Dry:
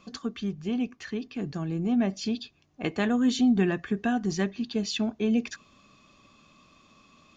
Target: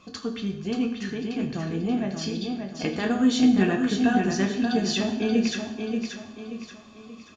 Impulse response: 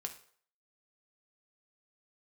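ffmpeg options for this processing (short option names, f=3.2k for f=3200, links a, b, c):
-filter_complex "[0:a]asplit=3[a][b][c];[a]afade=t=out:st=1.95:d=0.02[d];[b]acompressor=threshold=-27dB:ratio=6,afade=t=in:st=1.95:d=0.02,afade=t=out:st=3.03:d=0.02[e];[c]afade=t=in:st=3.03:d=0.02[f];[d][e][f]amix=inputs=3:normalize=0,aecho=1:1:581|1162|1743|2324|2905:0.531|0.212|0.0849|0.034|0.0136[g];[1:a]atrim=start_sample=2205,asetrate=26901,aresample=44100[h];[g][h]afir=irnorm=-1:irlink=0,volume=2.5dB"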